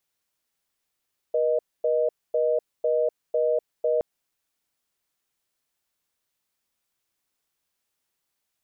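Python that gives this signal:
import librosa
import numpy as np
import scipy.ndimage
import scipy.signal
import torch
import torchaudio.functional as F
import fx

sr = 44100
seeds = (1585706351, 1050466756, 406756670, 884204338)

y = fx.call_progress(sr, length_s=2.67, kind='reorder tone', level_db=-22.5)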